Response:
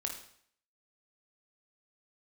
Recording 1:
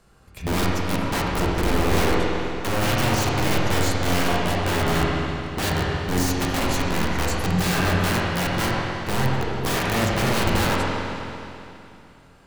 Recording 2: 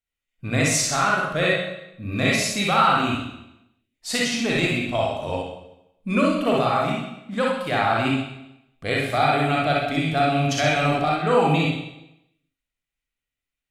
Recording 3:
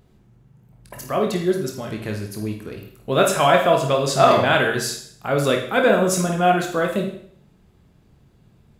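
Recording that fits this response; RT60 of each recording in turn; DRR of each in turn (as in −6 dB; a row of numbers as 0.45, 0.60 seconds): 3; 2.8, 0.85, 0.60 seconds; −4.5, −4.0, 1.5 decibels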